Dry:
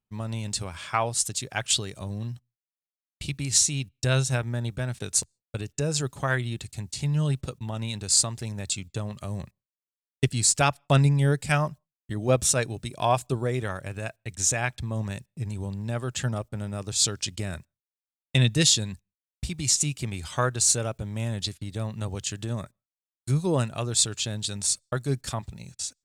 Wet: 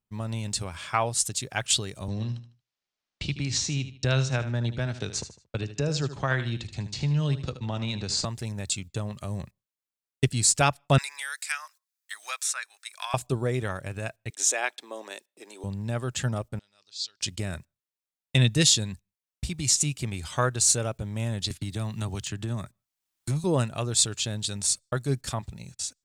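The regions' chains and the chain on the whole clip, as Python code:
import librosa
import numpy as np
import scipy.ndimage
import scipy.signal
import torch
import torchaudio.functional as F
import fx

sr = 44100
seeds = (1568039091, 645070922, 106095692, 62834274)

y = fx.chain(x, sr, fx.lowpass(hz=5900.0, slope=24),
    fx.echo_feedback(ms=76, feedback_pct=28, wet_db=-12.5),
    fx.band_squash(depth_pct=40), at=(2.08, 8.25))
y = fx.chain(y, sr, fx.highpass(hz=1300.0, slope=24),
    fx.peak_eq(hz=3000.0, db=-8.0, octaves=0.32),
    fx.band_squash(depth_pct=70), at=(10.98, 13.14))
y = fx.chain(y, sr, fx.steep_highpass(hz=320.0, slope=36),
    fx.peak_eq(hz=3500.0, db=4.5, octaves=0.3), at=(14.3, 15.64))
y = fx.chain(y, sr, fx.ladder_lowpass(hz=5000.0, resonance_pct=60),
    fx.differentiator(), at=(16.59, 17.21))
y = fx.chain(y, sr, fx.peak_eq(hz=510.0, db=-10.5, octaves=0.29),
    fx.overload_stage(gain_db=18.5),
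    fx.band_squash(depth_pct=70), at=(21.5, 23.44))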